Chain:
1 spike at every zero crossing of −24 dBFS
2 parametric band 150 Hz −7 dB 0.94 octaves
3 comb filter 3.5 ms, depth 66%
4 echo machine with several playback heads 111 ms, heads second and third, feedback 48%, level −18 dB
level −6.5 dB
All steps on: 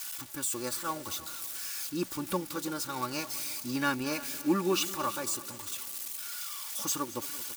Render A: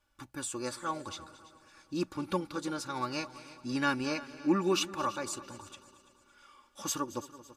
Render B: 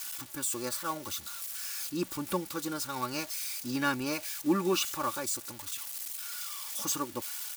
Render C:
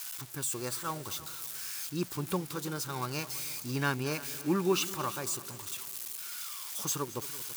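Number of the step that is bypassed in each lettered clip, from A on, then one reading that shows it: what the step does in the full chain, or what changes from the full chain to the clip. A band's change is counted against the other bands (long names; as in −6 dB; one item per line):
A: 1, distortion level −8 dB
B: 4, echo-to-direct ratio −14.0 dB to none audible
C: 3, 125 Hz band +7.5 dB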